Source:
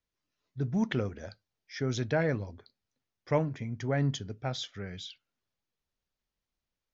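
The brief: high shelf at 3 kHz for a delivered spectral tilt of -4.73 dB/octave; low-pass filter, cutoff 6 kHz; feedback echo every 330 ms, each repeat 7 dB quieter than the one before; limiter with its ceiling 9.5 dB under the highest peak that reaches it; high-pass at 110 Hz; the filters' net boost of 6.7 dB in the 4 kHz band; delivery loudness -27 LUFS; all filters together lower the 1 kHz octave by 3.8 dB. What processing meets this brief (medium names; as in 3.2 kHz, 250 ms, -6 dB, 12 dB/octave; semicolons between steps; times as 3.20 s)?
high-pass 110 Hz; low-pass 6 kHz; peaking EQ 1 kHz -6 dB; treble shelf 3 kHz +3.5 dB; peaking EQ 4 kHz +6.5 dB; peak limiter -24.5 dBFS; feedback delay 330 ms, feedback 45%, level -7 dB; trim +9 dB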